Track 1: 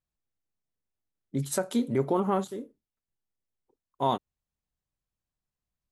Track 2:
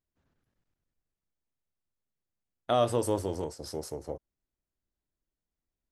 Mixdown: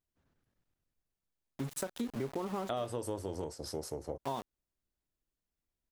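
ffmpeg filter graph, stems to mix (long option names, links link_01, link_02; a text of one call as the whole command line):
ffmpeg -i stem1.wav -i stem2.wav -filter_complex "[0:a]aeval=exprs='val(0)*gte(abs(val(0)),0.0224)':channel_layout=same,adelay=250,volume=-5dB[link_01];[1:a]volume=-1dB[link_02];[link_01][link_02]amix=inputs=2:normalize=0,acompressor=threshold=-33dB:ratio=6" out.wav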